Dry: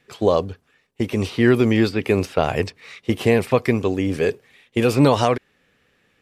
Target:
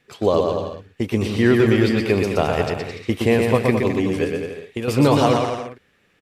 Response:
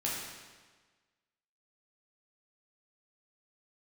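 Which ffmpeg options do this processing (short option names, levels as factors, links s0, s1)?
-filter_complex "[0:a]asettb=1/sr,asplit=3[s0][s1][s2];[s0]atrim=end=4.244[s3];[s1]atrim=start=4.24:end=4.88,asetpts=PTS-STARTPTS,afade=t=in:d=0.004:c=qsin,afade=t=out:st=0.636:d=0.004:c=qsin,acompressor=threshold=0.0501:ratio=2.5[s4];[s2]atrim=start=4.876[s5];[s3][s4]acrossfade=d=0.004:c1=hsin:c2=qsin[s6];[s6][s5]acrossfade=d=0.004:c1=qsin:c2=hsin,aecho=1:1:120|216|292.8|354.2|403.4:0.631|0.398|0.251|0.158|0.1,volume=0.891"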